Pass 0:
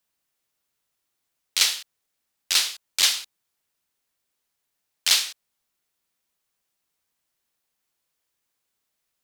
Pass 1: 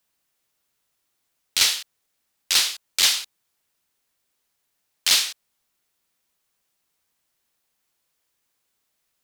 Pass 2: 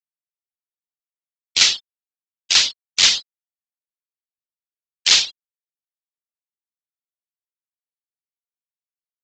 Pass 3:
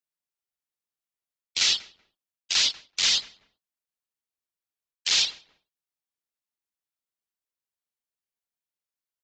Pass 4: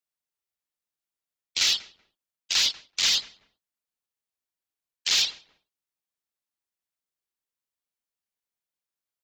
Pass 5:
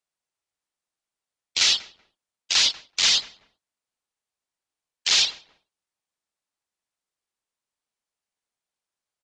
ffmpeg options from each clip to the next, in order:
-af "asoftclip=type=tanh:threshold=0.2,volume=1.58"
-af "afftfilt=real='re*gte(hypot(re,im),0.0708)':imag='im*gte(hypot(re,im),0.0708)':win_size=1024:overlap=0.75,aresample=16000,acrusher=bits=3:mode=log:mix=0:aa=0.000001,aresample=44100,volume=1.78"
-filter_complex "[0:a]asplit=2[s0][s1];[s1]adelay=190,lowpass=f=1100:p=1,volume=0.0631,asplit=2[s2][s3];[s3]adelay=190,lowpass=f=1100:p=1,volume=0.27[s4];[s0][s2][s4]amix=inputs=3:normalize=0,areverse,acompressor=threshold=0.0891:ratio=10,areverse,volume=1.19"
-af "asoftclip=type=hard:threshold=0.168"
-af "equalizer=f=800:t=o:w=1.5:g=3.5,aresample=22050,aresample=44100,volume=1.41"

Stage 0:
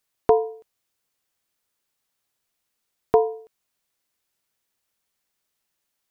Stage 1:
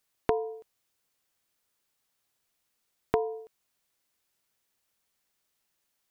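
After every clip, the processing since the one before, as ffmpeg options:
-af "acompressor=threshold=0.0631:ratio=6"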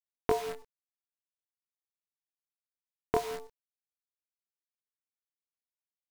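-af "acrusher=bits=7:dc=4:mix=0:aa=0.000001,flanger=delay=19.5:depth=7.4:speed=0.43,volume=1.26"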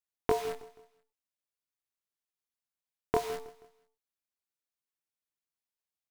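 -af "aecho=1:1:160|320|480:0.106|0.0445|0.0187"

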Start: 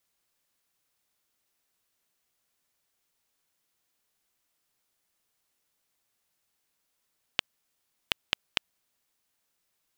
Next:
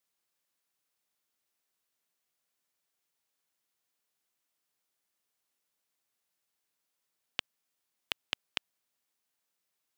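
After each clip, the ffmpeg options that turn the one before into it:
-af "highpass=f=150:p=1,volume=0.531"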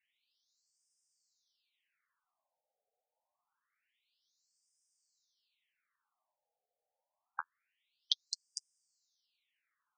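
-af "flanger=delay=5.5:depth=6.7:regen=-26:speed=0.6:shape=sinusoidal,afftfilt=real='re*between(b*sr/1024,590*pow(6800/590,0.5+0.5*sin(2*PI*0.26*pts/sr))/1.41,590*pow(6800/590,0.5+0.5*sin(2*PI*0.26*pts/sr))*1.41)':imag='im*between(b*sr/1024,590*pow(6800/590,0.5+0.5*sin(2*PI*0.26*pts/sr))/1.41,590*pow(6800/590,0.5+0.5*sin(2*PI*0.26*pts/sr))*1.41)':win_size=1024:overlap=0.75,volume=4.47"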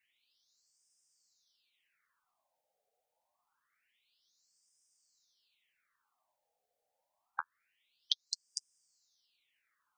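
-af "acompressor=threshold=0.00794:ratio=1.5,volume=1.78"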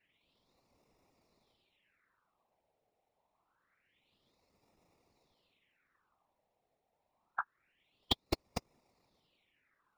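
-filter_complex "[0:a]acrossover=split=790|4000[s0][s1][s2];[s2]acrusher=samples=28:mix=1:aa=0.000001[s3];[s0][s1][s3]amix=inputs=3:normalize=0,afftfilt=real='hypot(re,im)*cos(2*PI*random(0))':imag='hypot(re,im)*sin(2*PI*random(1))':win_size=512:overlap=0.75,volume=2.82"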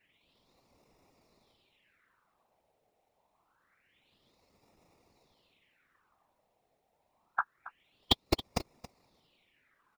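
-af "aecho=1:1:275:0.15,volume=1.88"

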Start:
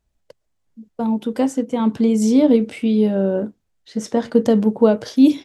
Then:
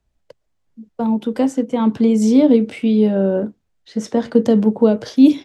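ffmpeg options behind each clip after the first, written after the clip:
-filter_complex "[0:a]highshelf=f=7800:g=-8.5,acrossover=split=190|490|2900[s0][s1][s2][s3];[s2]alimiter=limit=0.126:level=0:latency=1:release=158[s4];[s0][s1][s4][s3]amix=inputs=4:normalize=0,volume=1.26"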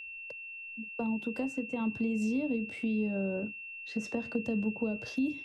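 -filter_complex "[0:a]acrossover=split=130[s0][s1];[s1]acompressor=threshold=0.0447:ratio=5[s2];[s0][s2]amix=inputs=2:normalize=0,aeval=exprs='val(0)+0.0178*sin(2*PI*2700*n/s)':c=same,volume=0.473"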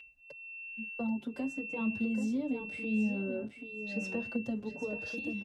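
-filter_complex "[0:a]aecho=1:1:783|1566|2349:0.398|0.0756|0.0144,asplit=2[s0][s1];[s1]adelay=5.4,afreqshift=0.9[s2];[s0][s2]amix=inputs=2:normalize=1"

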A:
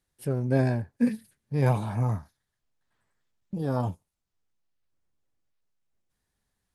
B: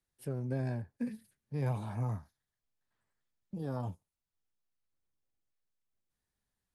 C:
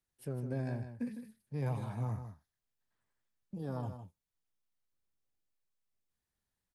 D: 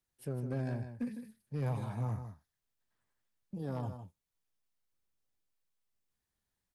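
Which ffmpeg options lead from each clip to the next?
-filter_complex "[0:a]acrossover=split=140[s0][s1];[s1]acompressor=threshold=0.0501:ratio=6[s2];[s0][s2]amix=inputs=2:normalize=0,volume=0.398"
-af "aecho=1:1:156:0.335,volume=0.794"
-af "asoftclip=type=hard:threshold=0.0299,volume=1.12"

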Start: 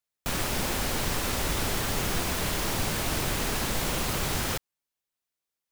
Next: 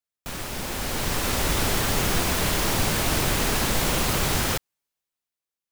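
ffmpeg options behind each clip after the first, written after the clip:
-af "dynaudnorm=f=220:g=9:m=3.16,volume=0.596"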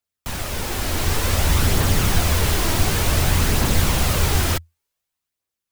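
-filter_complex "[0:a]aphaser=in_gain=1:out_gain=1:delay=3.2:decay=0.3:speed=0.55:type=triangular,acrossover=split=200[s0][s1];[s1]asoftclip=type=tanh:threshold=0.0668[s2];[s0][s2]amix=inputs=2:normalize=0,equalizer=f=83:w=4.6:g=9.5,volume=1.68"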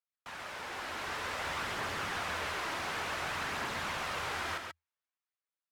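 -af "bandpass=f=1400:t=q:w=0.92:csg=0,aecho=1:1:135:0.562,volume=0.376"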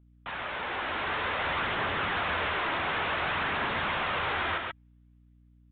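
-af "aeval=exprs='val(0)+0.000501*(sin(2*PI*60*n/s)+sin(2*PI*2*60*n/s)/2+sin(2*PI*3*60*n/s)/3+sin(2*PI*4*60*n/s)/4+sin(2*PI*5*60*n/s)/5)':c=same,asoftclip=type=tanh:threshold=0.0282,aresample=8000,aresample=44100,volume=2.66"

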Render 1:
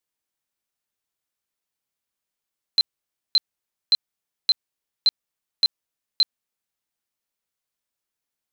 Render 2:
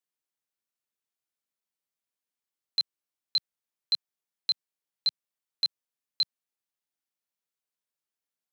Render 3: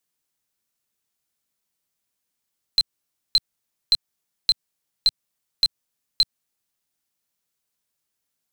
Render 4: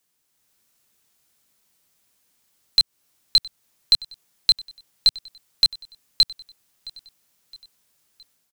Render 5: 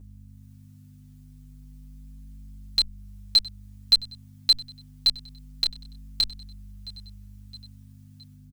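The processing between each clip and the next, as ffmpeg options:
-af "highpass=130,volume=0.447"
-af "bass=f=250:g=6,treble=f=4000:g=4,acompressor=threshold=0.0631:ratio=6,aeval=exprs='0.15*(cos(1*acos(clip(val(0)/0.15,-1,1)))-cos(1*PI/2))+0.00841*(cos(6*acos(clip(val(0)/0.15,-1,1)))-cos(6*PI/2))':c=same,volume=2.51"
-af "alimiter=limit=0.112:level=0:latency=1:release=305,dynaudnorm=f=260:g=3:m=2,aecho=1:1:666|1332|1998:0.0841|0.0412|0.0202,volume=2.11"
-filter_complex "[0:a]aeval=exprs='val(0)+0.00891*(sin(2*PI*50*n/s)+sin(2*PI*2*50*n/s)/2+sin(2*PI*3*50*n/s)/3+sin(2*PI*4*50*n/s)/4+sin(2*PI*5*50*n/s)/5)':c=same,asplit=2[s0][s1];[s1]adelay=7.5,afreqshift=-0.27[s2];[s0][s2]amix=inputs=2:normalize=1"

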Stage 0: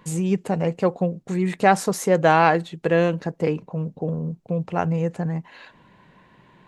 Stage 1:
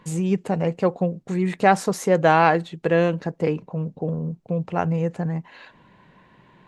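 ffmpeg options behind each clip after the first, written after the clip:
-af "highshelf=f=8700:g=-7"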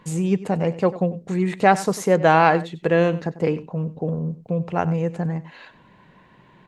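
-af "aecho=1:1:95:0.15,volume=1.12"

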